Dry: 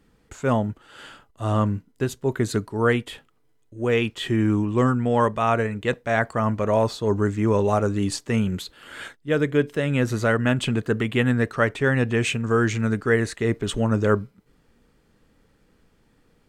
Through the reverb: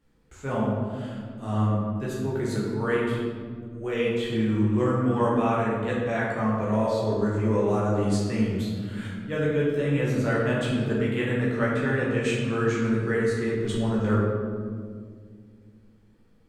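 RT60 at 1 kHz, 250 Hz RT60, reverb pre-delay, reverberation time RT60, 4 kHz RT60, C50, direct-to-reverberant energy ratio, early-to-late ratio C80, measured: 1.7 s, 3.0 s, 14 ms, 2.0 s, 1.0 s, −0.5 dB, −6.5 dB, 1.5 dB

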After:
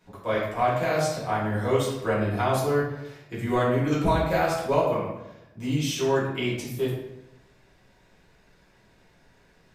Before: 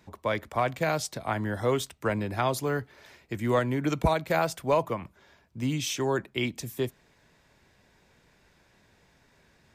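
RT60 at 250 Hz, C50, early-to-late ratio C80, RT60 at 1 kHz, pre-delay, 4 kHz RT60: 0.95 s, 2.0 dB, 5.0 dB, 0.80 s, 4 ms, 0.60 s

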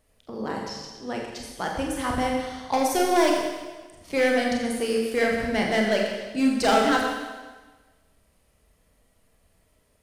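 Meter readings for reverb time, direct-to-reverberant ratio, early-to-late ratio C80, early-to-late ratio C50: 1.3 s, −0.5 dB, 4.0 dB, 2.5 dB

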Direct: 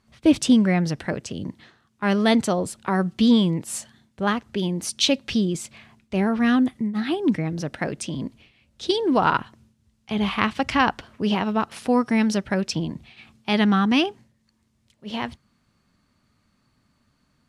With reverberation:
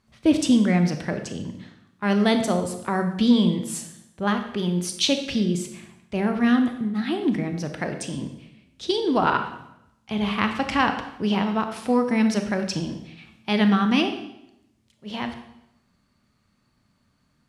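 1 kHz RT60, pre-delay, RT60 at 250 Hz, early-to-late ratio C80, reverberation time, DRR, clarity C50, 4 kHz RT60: 0.80 s, 26 ms, 0.90 s, 10.5 dB, 0.85 s, 6.5 dB, 8.0 dB, 0.75 s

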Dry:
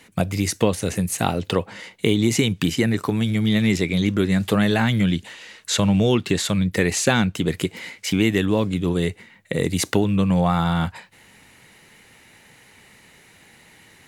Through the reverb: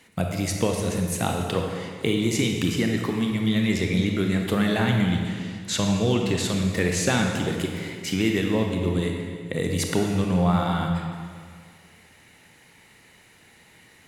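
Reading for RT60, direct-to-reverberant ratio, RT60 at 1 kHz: 2.0 s, 2.0 dB, 2.0 s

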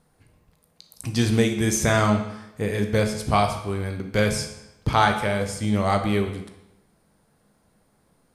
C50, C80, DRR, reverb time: 8.0 dB, 10.5 dB, 5.0 dB, 0.90 s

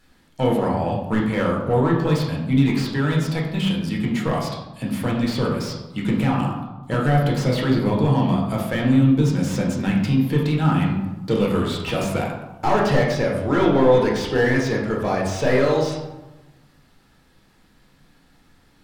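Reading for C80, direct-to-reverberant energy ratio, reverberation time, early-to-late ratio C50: 6.5 dB, −2.5 dB, 1.1 s, 3.5 dB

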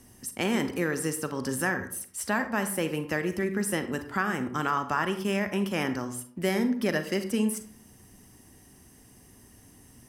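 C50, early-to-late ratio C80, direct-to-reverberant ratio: 10.5 dB, 14.0 dB, 8.5 dB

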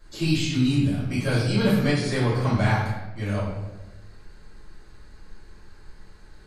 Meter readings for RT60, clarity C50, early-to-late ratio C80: 1.1 s, 1.0 dB, 4.0 dB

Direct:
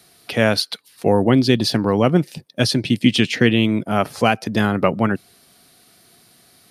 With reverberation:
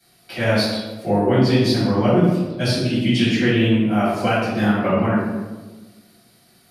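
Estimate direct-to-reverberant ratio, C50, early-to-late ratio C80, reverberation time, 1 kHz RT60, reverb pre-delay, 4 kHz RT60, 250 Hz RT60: −13.0 dB, −1.0 dB, 2.0 dB, 1.3 s, 1.2 s, 3 ms, 0.75 s, 1.6 s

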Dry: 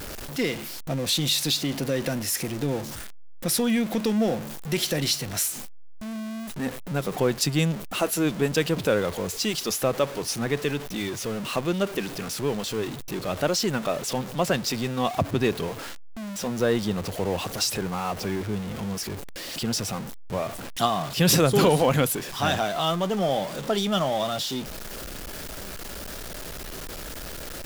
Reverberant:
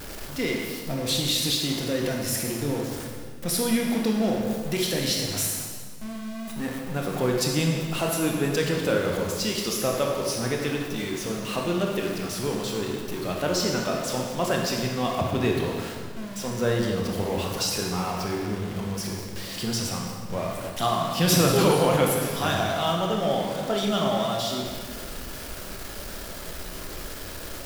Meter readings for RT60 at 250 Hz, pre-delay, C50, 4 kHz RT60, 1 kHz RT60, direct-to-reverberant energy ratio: 1.9 s, 20 ms, 1.5 dB, 1.4 s, 1.7 s, −0.5 dB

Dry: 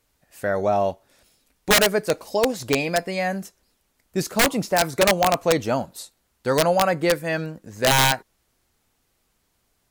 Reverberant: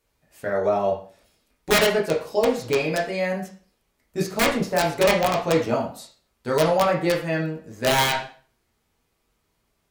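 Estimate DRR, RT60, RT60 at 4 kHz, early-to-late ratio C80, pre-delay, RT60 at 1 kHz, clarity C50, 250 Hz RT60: −3.5 dB, 0.45 s, 0.40 s, 12.0 dB, 5 ms, 0.40 s, 7.5 dB, 0.50 s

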